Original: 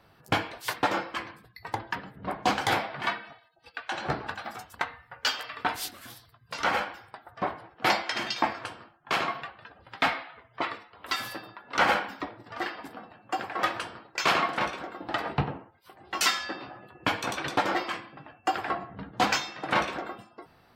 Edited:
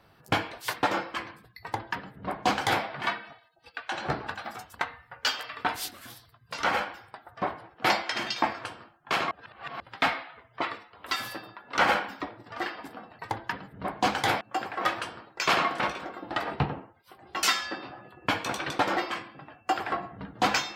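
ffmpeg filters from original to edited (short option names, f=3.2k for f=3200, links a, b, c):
-filter_complex "[0:a]asplit=5[a][b][c][d][e];[a]atrim=end=9.312[f];[b]atrim=start=9.308:end=9.802,asetpts=PTS-STARTPTS,areverse[g];[c]atrim=start=9.798:end=13.192[h];[d]atrim=start=1.618:end=2.842[i];[e]atrim=start=13.188[j];[f][g]acrossfade=d=0.004:c1=hsin:c2=hsin[k];[k][h]acrossfade=d=0.004:c1=hsin:c2=hsin[l];[l][i]acrossfade=d=0.004:c1=hsin:c2=hsin[m];[m][j]acrossfade=d=0.004:c1=hsin:c2=hsin"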